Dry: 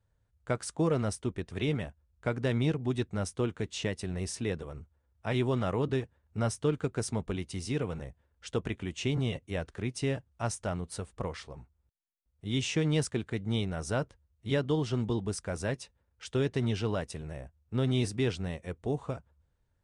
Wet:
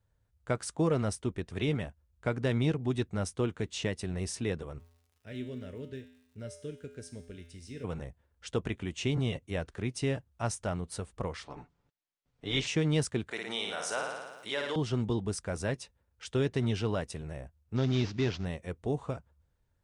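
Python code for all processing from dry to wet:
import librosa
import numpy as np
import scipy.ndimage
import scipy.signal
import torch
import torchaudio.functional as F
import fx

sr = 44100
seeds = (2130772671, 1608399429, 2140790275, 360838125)

y = fx.band_shelf(x, sr, hz=960.0, db=-15.5, octaves=1.0, at=(4.78, 7.83), fade=0.02)
y = fx.dmg_crackle(y, sr, seeds[0], per_s=140.0, level_db=-46.0, at=(4.78, 7.83), fade=0.02)
y = fx.comb_fb(y, sr, f0_hz=84.0, decay_s=0.78, harmonics='odd', damping=0.0, mix_pct=80, at=(4.78, 7.83), fade=0.02)
y = fx.spec_clip(y, sr, under_db=18, at=(11.44, 12.66), fade=0.02)
y = fx.air_absorb(y, sr, metres=110.0, at=(11.44, 12.66), fade=0.02)
y = fx.comb(y, sr, ms=6.9, depth=0.43, at=(11.44, 12.66), fade=0.02)
y = fx.chain(y, sr, fx.highpass(hz=680.0, slope=12),
    fx.room_flutter(wall_m=9.7, rt60_s=0.66),
    fx.env_flatten(amount_pct=50), at=(13.31, 14.76))
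y = fx.chain(y, sr, fx.cvsd(bps=32000),
    fx.notch(hz=480.0, q=7.5), at=(17.76, 18.45))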